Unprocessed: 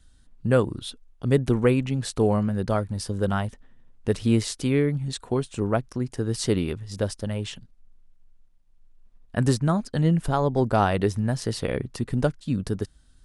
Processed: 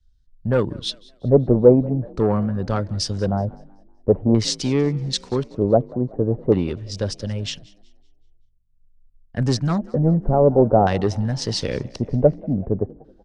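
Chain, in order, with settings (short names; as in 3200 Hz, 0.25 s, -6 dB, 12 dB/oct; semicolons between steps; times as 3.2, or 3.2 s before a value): high shelf 3300 Hz -9.5 dB; notch 640 Hz, Q 12; in parallel at 0 dB: compressor, threshold -29 dBFS, peak gain reduction 14 dB; on the sum: soft clip -14 dBFS, distortion -15 dB; LFO low-pass square 0.46 Hz 600–5600 Hz; on a send: frequency-shifting echo 0.19 s, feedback 63%, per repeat +47 Hz, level -20 dB; on the sum: three-band expander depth 70%; gain +2 dB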